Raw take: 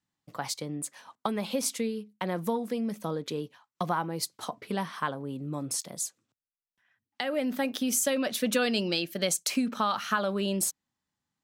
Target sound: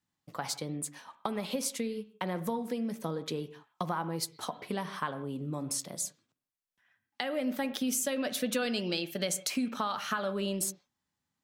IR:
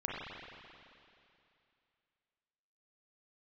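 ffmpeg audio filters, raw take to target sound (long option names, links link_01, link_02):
-filter_complex "[0:a]acompressor=threshold=-32dB:ratio=2,asplit=2[link_01][link_02];[1:a]atrim=start_sample=2205,afade=type=out:start_time=0.21:duration=0.01,atrim=end_sample=9702,adelay=12[link_03];[link_02][link_03]afir=irnorm=-1:irlink=0,volume=-14dB[link_04];[link_01][link_04]amix=inputs=2:normalize=0"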